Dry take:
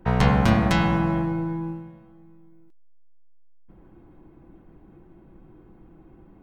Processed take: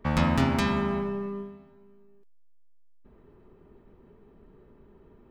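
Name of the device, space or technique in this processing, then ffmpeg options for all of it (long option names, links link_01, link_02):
nightcore: -af "asetrate=53361,aresample=44100,volume=-5dB"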